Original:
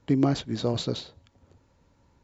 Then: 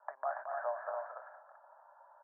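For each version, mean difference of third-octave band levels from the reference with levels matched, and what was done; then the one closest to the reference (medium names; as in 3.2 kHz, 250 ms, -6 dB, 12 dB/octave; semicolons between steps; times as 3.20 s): 18.0 dB: compression 3:1, threshold -39 dBFS, peak gain reduction 16.5 dB; level-controlled noise filter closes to 940 Hz, open at -35.5 dBFS; Chebyshev band-pass 600–1700 Hz, order 5; loudspeakers at several distances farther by 76 m -7 dB, 97 m -4 dB; trim +12.5 dB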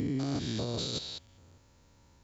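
7.5 dB: spectrogram pixelated in time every 200 ms; treble shelf 2.8 kHz +11.5 dB; peak limiter -25 dBFS, peak gain reduction 10 dB; bass shelf 120 Hz +3.5 dB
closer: second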